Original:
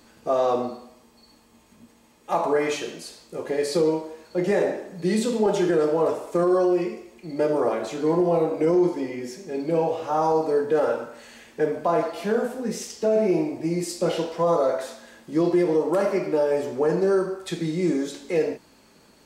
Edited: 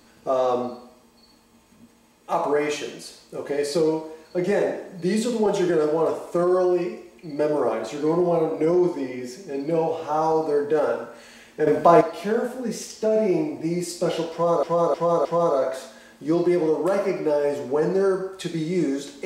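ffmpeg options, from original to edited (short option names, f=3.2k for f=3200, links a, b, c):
-filter_complex "[0:a]asplit=6[a][b][c][d][e][f];[a]atrim=end=11.672[g];[b]atrim=start=11.668:end=12.012,asetpts=PTS-STARTPTS,volume=8dB[h];[c]atrim=start=12.008:end=14.632[i];[d]atrim=start=14.318:end=14.632[j];[e]atrim=start=14.318:end=14.632[k];[f]atrim=start=14.318[l];[g][h]acrossfade=d=0.004:c1=hsin:c2=hsin[m];[m][i]acrossfade=d=0.004:c1=hsin:c2=hsin[n];[n][j]acrossfade=d=0.004:c1=hsin:c2=hsin[o];[o][k]acrossfade=d=0.004:c1=hsin:c2=hsin[p];[p][l]acrossfade=d=0.004:c1=hsin:c2=hsin"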